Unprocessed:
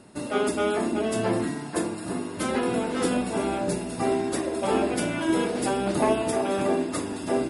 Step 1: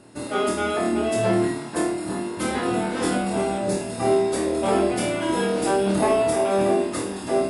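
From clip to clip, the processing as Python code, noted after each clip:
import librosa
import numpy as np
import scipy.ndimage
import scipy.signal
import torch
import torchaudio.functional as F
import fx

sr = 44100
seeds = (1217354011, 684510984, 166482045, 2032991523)

y = fx.room_flutter(x, sr, wall_m=4.4, rt60_s=0.45)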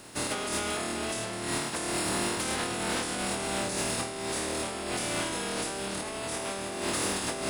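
y = fx.spec_flatten(x, sr, power=0.49)
y = fx.over_compress(y, sr, threshold_db=-28.0, ratio=-1.0)
y = 10.0 ** (-18.5 / 20.0) * np.tanh(y / 10.0 ** (-18.5 / 20.0))
y = y * librosa.db_to_amplitude(-3.5)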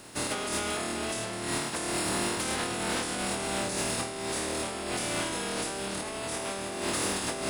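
y = x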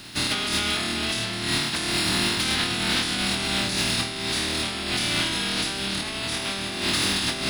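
y = fx.graphic_eq(x, sr, hz=(500, 1000, 4000, 8000), db=(-12, -5, 8, -10))
y = y * librosa.db_to_amplitude(8.5)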